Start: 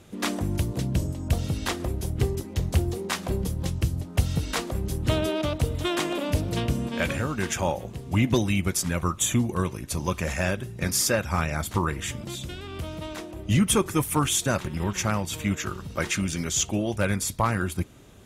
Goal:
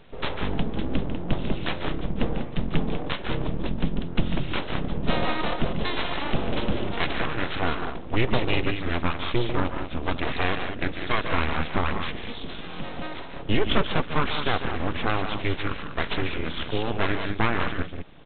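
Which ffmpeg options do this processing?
ffmpeg -i in.wav -af "equalizer=frequency=340:width=1.7:gain=-3.5,aecho=1:1:145.8|195.3:0.355|0.398,aresample=8000,aeval=exprs='abs(val(0))':channel_layout=same,aresample=44100,volume=3dB" out.wav

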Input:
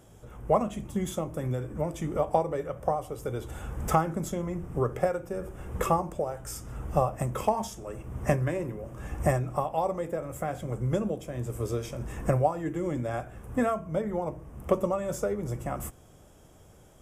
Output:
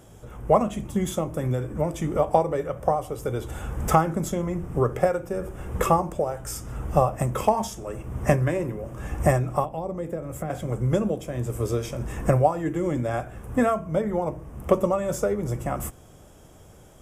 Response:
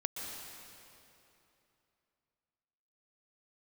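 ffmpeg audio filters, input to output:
-filter_complex "[0:a]asettb=1/sr,asplit=3[link_01][link_02][link_03];[link_01]atrim=end=9.644[link_04];[link_02]atrim=start=9.64:end=10.5,asetpts=PTS-STARTPTS,afade=type=in:duration=0.004:curve=qsin,afade=type=out:start_time=0.856:duration=0.004:curve=qsin,acrossover=split=410[link_05][link_06];[link_06]acompressor=threshold=-41dB:ratio=4[link_07];[link_05][link_07]amix=inputs=2:normalize=0[link_08];[link_03]atrim=start=10.496[link_09];[link_04][link_08]acrossfade=duration=0.004:curve1=hsin:curve2=qsin[link_10];[link_10][link_09]acrossfade=duration=0.004:curve1=qsin:curve2=hsin,volume=5dB"

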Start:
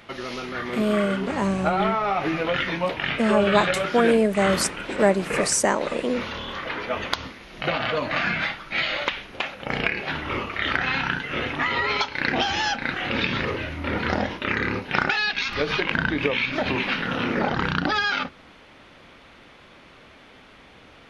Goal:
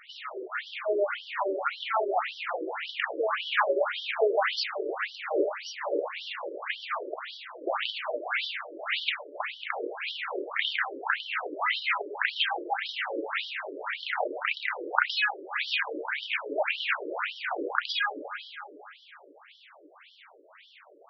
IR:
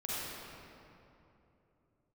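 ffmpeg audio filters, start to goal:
-filter_complex "[0:a]bandreject=frequency=520:width=12,asplit=2[link_01][link_02];[1:a]atrim=start_sample=2205,asetrate=37485,aresample=44100,adelay=49[link_03];[link_02][link_03]afir=irnorm=-1:irlink=0,volume=-13dB[link_04];[link_01][link_04]amix=inputs=2:normalize=0,afftfilt=real='re*between(b*sr/1024,410*pow(4200/410,0.5+0.5*sin(2*PI*1.8*pts/sr))/1.41,410*pow(4200/410,0.5+0.5*sin(2*PI*1.8*pts/sr))*1.41)':imag='im*between(b*sr/1024,410*pow(4200/410,0.5+0.5*sin(2*PI*1.8*pts/sr))/1.41,410*pow(4200/410,0.5+0.5*sin(2*PI*1.8*pts/sr))*1.41)':win_size=1024:overlap=0.75,volume=1dB"

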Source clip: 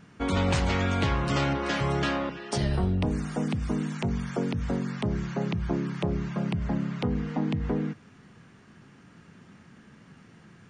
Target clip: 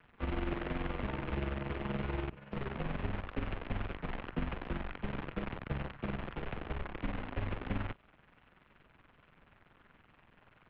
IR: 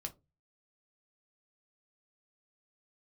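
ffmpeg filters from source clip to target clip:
-filter_complex "[0:a]asplit=3[link_01][link_02][link_03];[link_01]afade=type=out:start_time=1.1:duration=0.02[link_04];[link_02]bandreject=frequency=64.79:width_type=h:width=4,bandreject=frequency=129.58:width_type=h:width=4,bandreject=frequency=194.37:width_type=h:width=4,bandreject=frequency=259.16:width_type=h:width=4,bandreject=frequency=323.95:width_type=h:width=4,bandreject=frequency=388.74:width_type=h:width=4,bandreject=frequency=453.53:width_type=h:width=4,bandreject=frequency=518.32:width_type=h:width=4,bandreject=frequency=583.11:width_type=h:width=4,bandreject=frequency=647.9:width_type=h:width=4,bandreject=frequency=712.69:width_type=h:width=4,bandreject=frequency=777.48:width_type=h:width=4,bandreject=frequency=842.27:width_type=h:width=4,bandreject=frequency=907.06:width_type=h:width=4,bandreject=frequency=971.85:width_type=h:width=4,bandreject=frequency=1036.64:width_type=h:width=4,bandreject=frequency=1101.43:width_type=h:width=4,bandreject=frequency=1166.22:width_type=h:width=4,bandreject=frequency=1231.01:width_type=h:width=4,bandreject=frequency=1295.8:width_type=h:width=4,bandreject=frequency=1360.59:width_type=h:width=4,bandreject=frequency=1425.38:width_type=h:width=4,bandreject=frequency=1490.17:width_type=h:width=4,bandreject=frequency=1554.96:width_type=h:width=4,bandreject=frequency=1619.75:width_type=h:width=4,bandreject=frequency=1684.54:width_type=h:width=4,bandreject=frequency=1749.33:width_type=h:width=4,bandreject=frequency=1814.12:width_type=h:width=4,bandreject=frequency=1878.91:width_type=h:width=4,bandreject=frequency=1943.7:width_type=h:width=4,bandreject=frequency=2008.49:width_type=h:width=4,bandreject=frequency=2073.28:width_type=h:width=4,bandreject=frequency=2138.07:width_type=h:width=4,afade=type=in:start_time=1.1:duration=0.02,afade=type=out:start_time=1.68:duration=0.02[link_05];[link_03]afade=type=in:start_time=1.68:duration=0.02[link_06];[link_04][link_05][link_06]amix=inputs=3:normalize=0,asettb=1/sr,asplit=3[link_07][link_08][link_09];[link_07]atrim=end=5.444[link_10];[link_08]atrim=start=5.44:end=6.11,asetpts=PTS-STARTPTS,afade=type=in:duration=0.004:curve=qsin,afade=type=out:start_time=0.666:duration=0.004:curve=qsin,lowshelf=frequency=200:gain=-6[link_11];[link_09]atrim=start=6.106[link_12];[link_10][link_11]acrossfade=duration=0.004:curve1=hsin:curve2=qsin[link_13];[link_13][link_12]acrossfade=duration=0.004:curve1=qsin:curve2=hsin,acrossover=split=130|710[link_14][link_15][link_16];[link_16]acompressor=threshold=-47dB:ratio=6[link_17];[link_14][link_15][link_17]amix=inputs=3:normalize=0,acrusher=bits=6:dc=4:mix=0:aa=0.000001,tremolo=f=21:d=0.621,highpass=frequency=230:width_type=q:width=0.5412,highpass=frequency=230:width_type=q:width=1.307,lowpass=frequency=3200:width_type=q:width=0.5176,lowpass=frequency=3200:width_type=q:width=0.7071,lowpass=frequency=3200:width_type=q:width=1.932,afreqshift=-210,volume=-2dB"

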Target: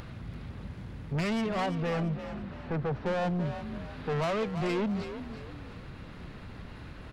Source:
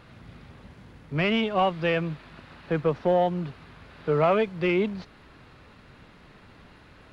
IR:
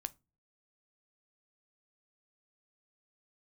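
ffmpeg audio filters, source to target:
-filter_complex "[0:a]lowshelf=frequency=190:gain=9.5,asoftclip=type=tanh:threshold=-27.5dB,asettb=1/sr,asplit=3[link_01][link_02][link_03];[link_01]atrim=end=1.664[link_04];[link_02]atrim=start=1.66:end=3.06,asetpts=PTS-STARTPTS,afade=type=in:duration=0.004:curve=qsin,afade=type=out:start_time=1.396:duration=0.004:curve=qsin,highshelf=frequency=2900:gain=-11[link_05];[link_03]atrim=start=3.056[link_06];[link_04][link_05]acrossfade=duration=0.004:curve1=hsin:curve2=qsin[link_07];[link_07][link_06]acrossfade=duration=0.004:curve1=qsin:curve2=hsin,acompressor=mode=upward:threshold=-39dB:ratio=2.5,asplit=2[link_08][link_09];[link_09]asplit=4[link_10][link_11][link_12][link_13];[link_10]adelay=338,afreqshift=41,volume=-10dB[link_14];[link_11]adelay=676,afreqshift=82,volume=-18.9dB[link_15];[link_12]adelay=1014,afreqshift=123,volume=-27.7dB[link_16];[link_13]adelay=1352,afreqshift=164,volume=-36.6dB[link_17];[link_14][link_15][link_16][link_17]amix=inputs=4:normalize=0[link_18];[link_08][link_18]amix=inputs=2:normalize=0"

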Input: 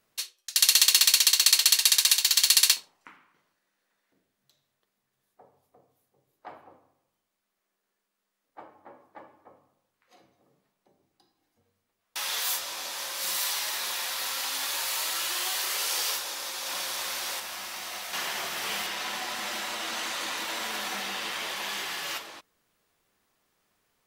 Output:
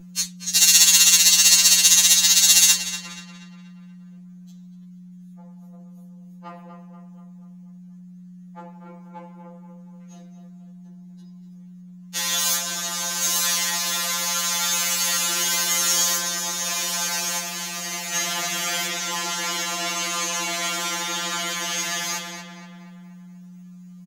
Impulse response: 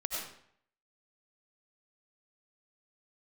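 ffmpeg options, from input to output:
-filter_complex "[0:a]equalizer=frequency=6600:width=4.7:gain=12,acontrast=64,aeval=exprs='val(0)+0.0158*(sin(2*PI*60*n/s)+sin(2*PI*2*60*n/s)/2+sin(2*PI*3*60*n/s)/3+sin(2*PI*4*60*n/s)/4+sin(2*PI*5*60*n/s)/5)':channel_layout=same,asplit=2[link_01][link_02];[link_02]adelay=240,lowpass=frequency=3100:poles=1,volume=-8dB,asplit=2[link_03][link_04];[link_04]adelay=240,lowpass=frequency=3100:poles=1,volume=0.54,asplit=2[link_05][link_06];[link_06]adelay=240,lowpass=frequency=3100:poles=1,volume=0.54,asplit=2[link_07][link_08];[link_08]adelay=240,lowpass=frequency=3100:poles=1,volume=0.54,asplit=2[link_09][link_10];[link_10]adelay=240,lowpass=frequency=3100:poles=1,volume=0.54,asplit=2[link_11][link_12];[link_12]adelay=240,lowpass=frequency=3100:poles=1,volume=0.54[link_13];[link_03][link_05][link_07][link_09][link_11][link_13]amix=inputs=6:normalize=0[link_14];[link_01][link_14]amix=inputs=2:normalize=0,afftfilt=real='re*2.83*eq(mod(b,8),0)':imag='im*2.83*eq(mod(b,8),0)':win_size=2048:overlap=0.75,volume=1dB"

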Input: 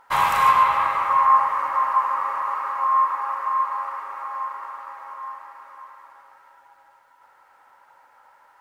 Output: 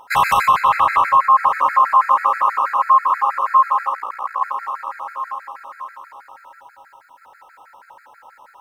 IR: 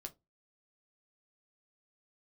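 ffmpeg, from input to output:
-filter_complex "[0:a]asettb=1/sr,asplit=3[link_01][link_02][link_03];[link_01]atrim=end=3.944[link_04];[link_02]atrim=start=3.94:end=4.42,asetpts=PTS-STARTPTS,afade=type=in:duration=0.004:curve=qsin,afade=type=out:start_time=0.476:duration=0.004:curve=qsin,aeval=exprs='val(0)*sin(2*PI*29*n/s)':channel_layout=same[link_05];[link_03]atrim=start=4.416[link_06];[link_04][link_05]acrossfade=duration=0.004:curve1=hsin:curve2=qsin[link_07];[link_07][link_06]acrossfade=duration=0.004:curve1=qsin:curve2=hsin,alimiter=level_in=14.5dB:limit=-1dB:release=50:level=0:latency=1,afftfilt=real='re*gt(sin(2*PI*6.2*pts/sr)*(1-2*mod(floor(b*sr/1024/1300),2)),0)':imag='im*gt(sin(2*PI*6.2*pts/sr)*(1-2*mod(floor(b*sr/1024/1300),2)),0)':win_size=1024:overlap=0.75,volume=-3dB"

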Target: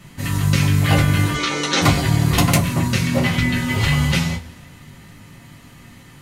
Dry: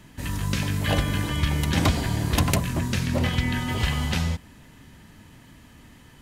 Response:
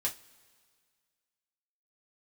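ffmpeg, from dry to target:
-filter_complex "[0:a]asettb=1/sr,asplit=3[link_01][link_02][link_03];[link_01]atrim=end=1.344[link_04];[link_02]atrim=start=1.34:end=1.82,asetpts=PTS-STARTPTS,afade=type=in:duration=0.004:curve=qsin,afade=type=out:start_time=0.476:duration=0.004:curve=qsin,highpass=frequency=260:width=0.5412,highpass=frequency=260:width=1.3066,equalizer=frequency=450:width_type=q:width=4:gain=9,equalizer=frequency=1300:width_type=q:width=4:gain=6,equalizer=frequency=3900:width_type=q:width=4:gain=7,equalizer=frequency=6000:width_type=q:width=4:gain=8,lowpass=frequency=8300:width=0.5412,lowpass=frequency=8300:width=1.3066[link_05];[link_03]atrim=start=1.816[link_06];[link_04][link_05]acrossfade=duration=0.004:curve1=hsin:curve2=qsin[link_07];[link_07][link_06]acrossfade=duration=0.004:curve1=qsin:curve2=hsin[link_08];[1:a]atrim=start_sample=2205,asetrate=52920,aresample=44100[link_09];[link_08][link_09]afir=irnorm=-1:irlink=0,volume=5.5dB"

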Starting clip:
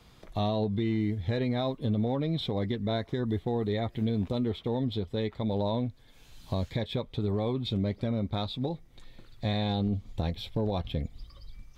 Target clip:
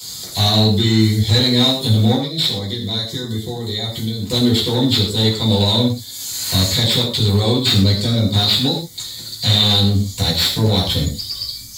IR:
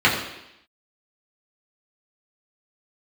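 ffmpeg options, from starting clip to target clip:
-filter_complex "[0:a]highshelf=frequency=3700:gain=10.5,asettb=1/sr,asplit=3[link_01][link_02][link_03];[link_01]atrim=end=2.144[link_04];[link_02]atrim=start=2.14:end=4.31,asetpts=PTS-STARTPTS,afade=type=in:duration=0.004:curve=qsin,afade=type=out:start_time=2.166:duration=0.004:curve=qsin,acompressor=threshold=-35dB:ratio=6[link_05];[link_03]atrim=start=4.306[link_06];[link_04][link_05]acrossfade=duration=0.004:curve1=hsin:curve2=qsin[link_07];[link_07][link_06]acrossfade=duration=0.004:curve1=qsin:curve2=hsin,aexciter=amount=12.8:drive=9.4:freq=4200,asoftclip=type=hard:threshold=-20.5dB[link_08];[1:a]atrim=start_sample=2205,atrim=end_sample=6174[link_09];[link_08][link_09]afir=irnorm=-1:irlink=0,volume=-8.5dB"

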